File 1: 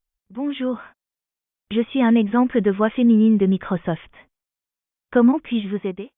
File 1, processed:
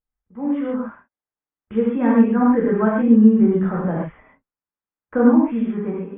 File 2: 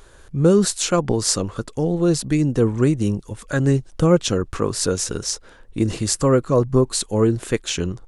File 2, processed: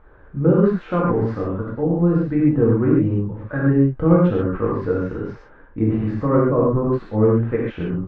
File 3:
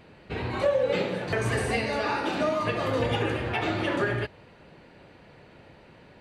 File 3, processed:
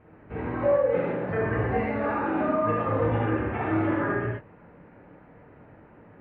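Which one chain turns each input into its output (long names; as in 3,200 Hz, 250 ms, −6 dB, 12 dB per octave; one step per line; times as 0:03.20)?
low-pass filter 1,800 Hz 24 dB per octave
reverb whose tail is shaped and stops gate 160 ms flat, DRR −5 dB
level −5 dB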